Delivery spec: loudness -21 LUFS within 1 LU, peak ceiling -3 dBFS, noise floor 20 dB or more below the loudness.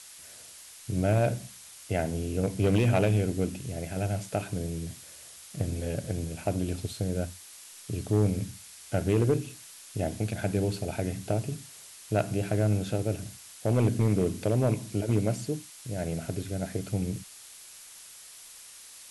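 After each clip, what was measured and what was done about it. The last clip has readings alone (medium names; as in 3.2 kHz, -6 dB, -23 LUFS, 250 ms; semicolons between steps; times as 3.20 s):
clipped samples 0.4%; clipping level -17.0 dBFS; noise floor -49 dBFS; noise floor target -50 dBFS; loudness -30.0 LUFS; peak level -17.0 dBFS; loudness target -21.0 LUFS
-> clip repair -17 dBFS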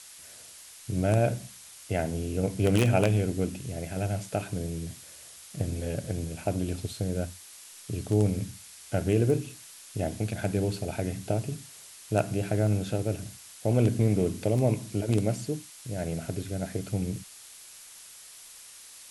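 clipped samples 0.0%; noise floor -49 dBFS; noise floor target -50 dBFS
-> noise print and reduce 6 dB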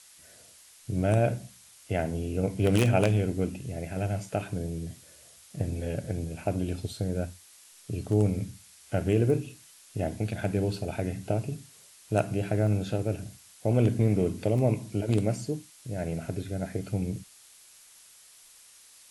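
noise floor -55 dBFS; loudness -29.5 LUFS; peak level -8.0 dBFS; loudness target -21.0 LUFS
-> trim +8.5 dB; peak limiter -3 dBFS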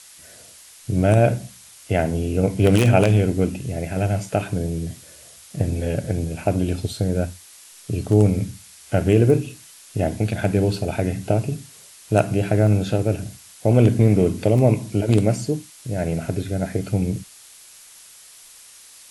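loudness -21.0 LUFS; peak level -3.0 dBFS; noise floor -46 dBFS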